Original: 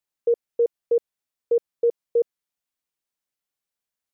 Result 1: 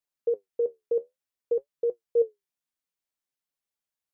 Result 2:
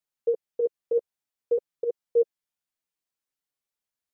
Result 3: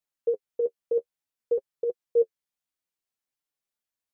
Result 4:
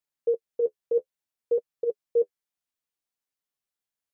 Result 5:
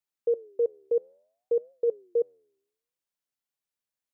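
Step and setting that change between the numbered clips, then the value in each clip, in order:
flange, regen: +59%, +1%, +22%, -27%, -90%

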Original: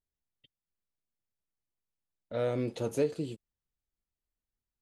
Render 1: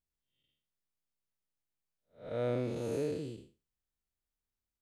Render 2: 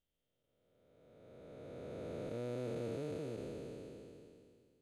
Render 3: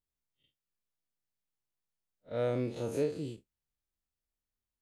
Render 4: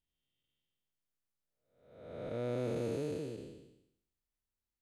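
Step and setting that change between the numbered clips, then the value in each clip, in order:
spectral blur, width: 213 ms, 1570 ms, 82 ms, 562 ms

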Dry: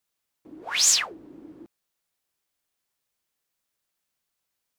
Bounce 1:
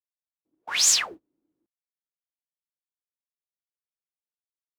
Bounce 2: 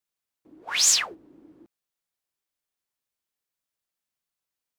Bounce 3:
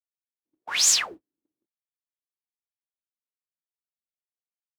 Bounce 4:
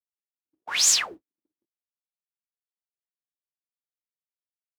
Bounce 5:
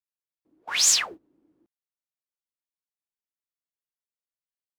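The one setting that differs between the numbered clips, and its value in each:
gate, range: -33 dB, -7 dB, -45 dB, -59 dB, -21 dB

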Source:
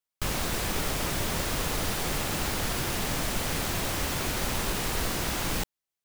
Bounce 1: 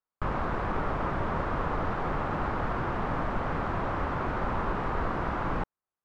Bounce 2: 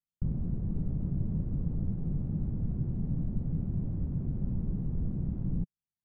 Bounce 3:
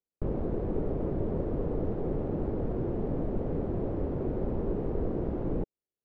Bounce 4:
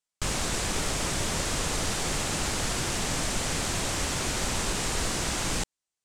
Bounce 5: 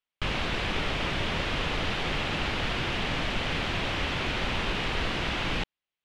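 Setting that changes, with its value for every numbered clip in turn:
resonant low-pass, frequency: 1.2 kHz, 170 Hz, 430 Hz, 8 kHz, 3 kHz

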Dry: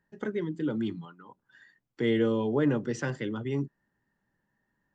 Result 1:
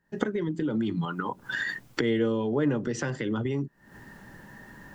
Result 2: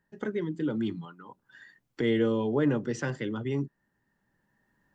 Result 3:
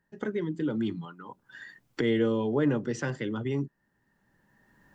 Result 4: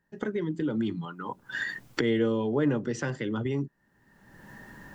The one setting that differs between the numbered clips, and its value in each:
recorder AGC, rising by: 89 dB/s, 5.1 dB/s, 13 dB/s, 34 dB/s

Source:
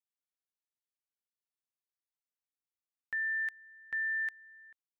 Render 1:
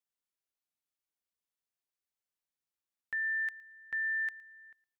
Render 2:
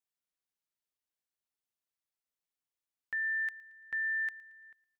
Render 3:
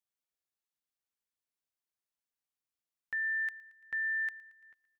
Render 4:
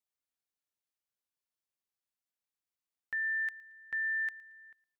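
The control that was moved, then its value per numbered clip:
feedback delay, feedback: 16%, 41%, 62%, 27%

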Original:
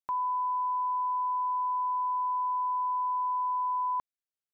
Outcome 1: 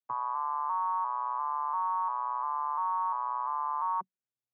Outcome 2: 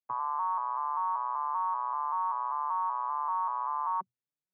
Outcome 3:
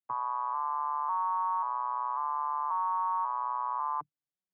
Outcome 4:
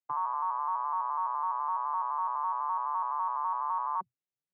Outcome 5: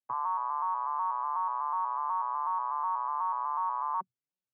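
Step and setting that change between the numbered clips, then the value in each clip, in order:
vocoder on a broken chord, a note every: 347 ms, 193 ms, 541 ms, 84 ms, 123 ms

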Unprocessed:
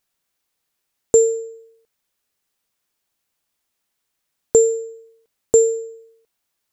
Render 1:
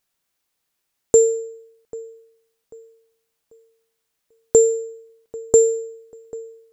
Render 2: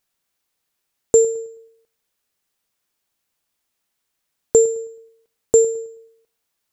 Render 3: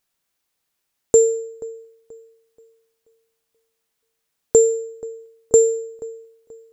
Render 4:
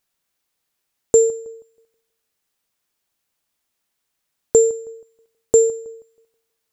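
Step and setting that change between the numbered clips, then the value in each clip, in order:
feedback echo behind a low-pass, time: 791 ms, 107 ms, 481 ms, 160 ms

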